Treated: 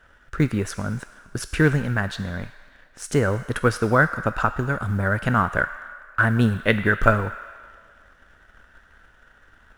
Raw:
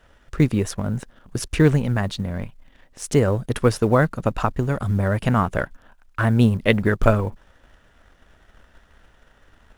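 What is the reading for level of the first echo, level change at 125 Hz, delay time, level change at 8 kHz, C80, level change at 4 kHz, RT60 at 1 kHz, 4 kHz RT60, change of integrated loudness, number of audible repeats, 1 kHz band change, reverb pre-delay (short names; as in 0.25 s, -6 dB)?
none, -3.0 dB, none, -2.5 dB, 12.5 dB, -2.0 dB, 1.9 s, 1.5 s, -1.0 dB, none, +2.0 dB, 5 ms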